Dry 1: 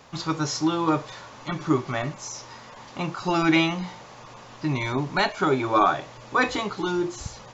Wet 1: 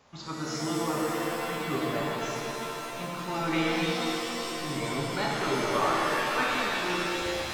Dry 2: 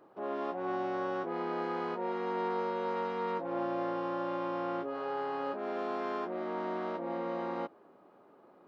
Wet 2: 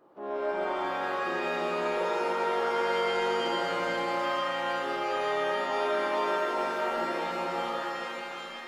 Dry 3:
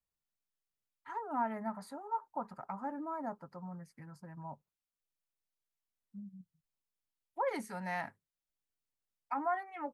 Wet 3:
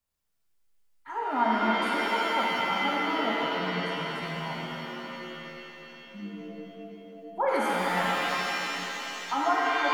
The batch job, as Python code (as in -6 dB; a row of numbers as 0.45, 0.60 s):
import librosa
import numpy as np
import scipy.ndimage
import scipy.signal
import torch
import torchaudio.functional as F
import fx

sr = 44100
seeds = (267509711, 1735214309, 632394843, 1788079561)

y = fx.rev_shimmer(x, sr, seeds[0], rt60_s=3.5, semitones=7, shimmer_db=-2, drr_db=-3.5)
y = y * 10.0 ** (-30 / 20.0) / np.sqrt(np.mean(np.square(y)))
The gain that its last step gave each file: -11.5, -2.5, +5.0 dB